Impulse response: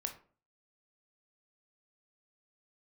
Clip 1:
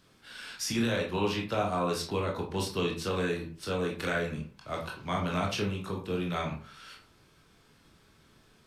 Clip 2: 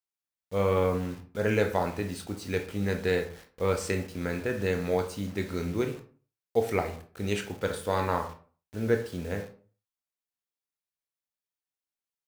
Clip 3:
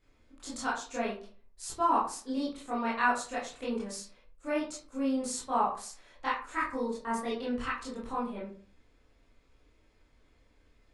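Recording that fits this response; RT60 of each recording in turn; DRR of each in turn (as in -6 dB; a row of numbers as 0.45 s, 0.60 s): 2; 0.45 s, 0.45 s, 0.45 s; -1.0 dB, 4.5 dB, -8.5 dB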